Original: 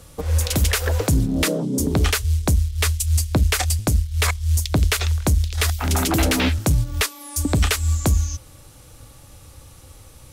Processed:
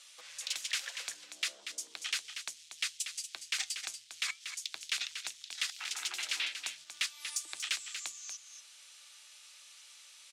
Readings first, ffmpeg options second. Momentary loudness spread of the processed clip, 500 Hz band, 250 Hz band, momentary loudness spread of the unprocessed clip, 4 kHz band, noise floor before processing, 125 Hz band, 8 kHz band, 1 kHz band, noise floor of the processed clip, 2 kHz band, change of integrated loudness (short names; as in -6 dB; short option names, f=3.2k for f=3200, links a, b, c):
18 LU, -35.5 dB, under -40 dB, 3 LU, -8.5 dB, -46 dBFS, under -40 dB, -12.0 dB, -22.5 dB, -57 dBFS, -11.5 dB, -16.5 dB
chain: -filter_complex "[0:a]highshelf=f=5.4k:g=-8.5,acompressor=threshold=-32dB:ratio=2,asuperpass=centerf=4600:order=4:qfactor=0.73,asoftclip=type=tanh:threshold=-24dB,afreqshift=37,asplit=2[a][b];[b]aecho=0:1:237:0.376[c];[a][c]amix=inputs=2:normalize=0,flanger=delay=0.3:depth=5.2:regen=-85:speed=0.37:shape=sinusoidal,volume=7dB"